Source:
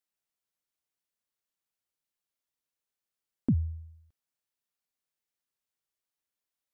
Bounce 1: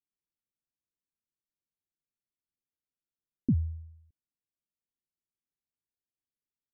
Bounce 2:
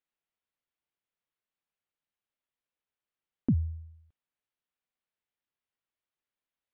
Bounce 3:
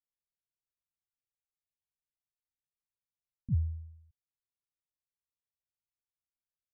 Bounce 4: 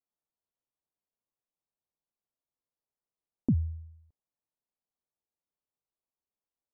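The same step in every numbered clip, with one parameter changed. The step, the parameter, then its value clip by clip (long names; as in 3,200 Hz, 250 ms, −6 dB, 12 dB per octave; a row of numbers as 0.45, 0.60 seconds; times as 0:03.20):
inverse Chebyshev low-pass filter, stop band from: 1,700, 12,000, 640, 4,600 Hertz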